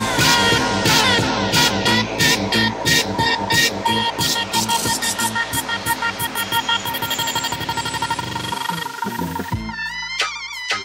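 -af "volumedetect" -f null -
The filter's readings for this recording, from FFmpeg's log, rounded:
mean_volume: -19.7 dB
max_volume: -3.6 dB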